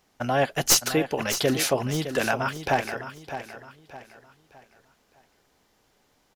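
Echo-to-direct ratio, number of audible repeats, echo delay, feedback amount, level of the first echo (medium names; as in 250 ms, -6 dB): -10.5 dB, 3, 612 ms, 36%, -11.0 dB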